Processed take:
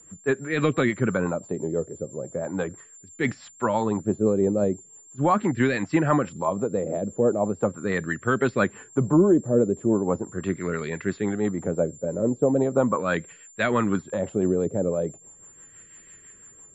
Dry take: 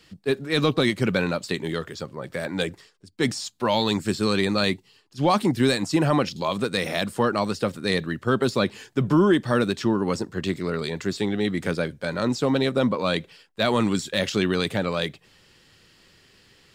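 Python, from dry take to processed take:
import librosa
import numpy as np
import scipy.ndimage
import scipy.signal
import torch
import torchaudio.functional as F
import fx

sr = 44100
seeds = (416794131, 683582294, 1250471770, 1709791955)

y = fx.filter_lfo_lowpass(x, sr, shape='sine', hz=0.39, low_hz=520.0, high_hz=2000.0, q=2.0)
y = y + 10.0 ** (-44.0 / 20.0) * np.sin(2.0 * np.pi * 7300.0 * np.arange(len(y)) / sr)
y = fx.rotary(y, sr, hz=6.0)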